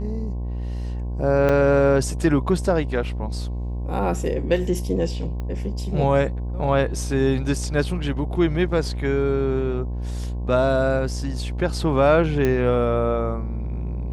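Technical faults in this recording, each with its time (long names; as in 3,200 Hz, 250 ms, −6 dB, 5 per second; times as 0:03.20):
mains buzz 60 Hz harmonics 18 −27 dBFS
0:01.49: drop-out 4.3 ms
0:05.40: click −20 dBFS
0:12.45: click −10 dBFS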